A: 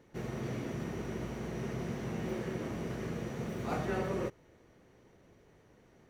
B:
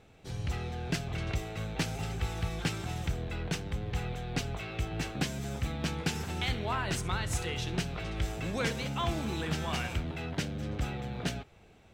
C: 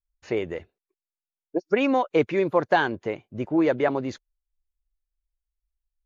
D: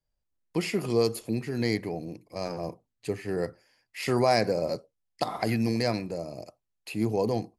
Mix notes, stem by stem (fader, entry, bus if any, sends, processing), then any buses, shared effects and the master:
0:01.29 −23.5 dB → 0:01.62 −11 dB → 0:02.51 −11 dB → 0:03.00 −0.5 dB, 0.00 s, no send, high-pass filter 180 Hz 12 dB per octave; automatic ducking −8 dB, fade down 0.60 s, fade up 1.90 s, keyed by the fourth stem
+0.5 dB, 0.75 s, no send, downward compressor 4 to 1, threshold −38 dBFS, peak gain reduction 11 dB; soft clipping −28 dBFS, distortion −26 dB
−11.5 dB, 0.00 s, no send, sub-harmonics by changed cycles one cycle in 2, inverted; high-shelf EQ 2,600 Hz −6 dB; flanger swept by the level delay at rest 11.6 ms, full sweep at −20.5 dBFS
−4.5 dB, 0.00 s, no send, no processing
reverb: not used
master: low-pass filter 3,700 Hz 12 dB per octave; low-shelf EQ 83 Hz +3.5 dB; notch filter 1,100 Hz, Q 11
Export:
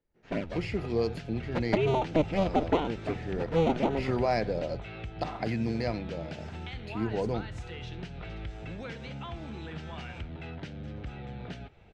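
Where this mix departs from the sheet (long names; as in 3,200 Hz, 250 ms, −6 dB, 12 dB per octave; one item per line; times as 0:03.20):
stem B: entry 0.75 s → 0.25 s
stem C −11.5 dB → −3.0 dB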